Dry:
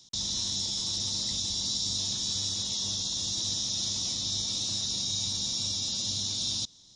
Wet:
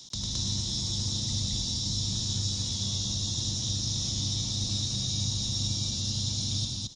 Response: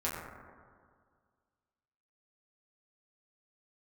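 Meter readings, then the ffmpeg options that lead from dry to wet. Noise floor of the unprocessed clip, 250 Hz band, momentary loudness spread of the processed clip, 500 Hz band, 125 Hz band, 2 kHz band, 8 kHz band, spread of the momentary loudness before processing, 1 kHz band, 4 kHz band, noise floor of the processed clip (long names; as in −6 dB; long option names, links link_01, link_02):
−56 dBFS, +6.0 dB, 1 LU, +1.0 dB, +12.0 dB, −1.5 dB, −1.5 dB, 1 LU, −1.0 dB, −1.5 dB, −34 dBFS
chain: -filter_complex "[0:a]acrossover=split=220[link_01][link_02];[link_02]acompressor=threshold=-47dB:ratio=3[link_03];[link_01][link_03]amix=inputs=2:normalize=0,aecho=1:1:102|218.7:0.631|1,volume=8dB"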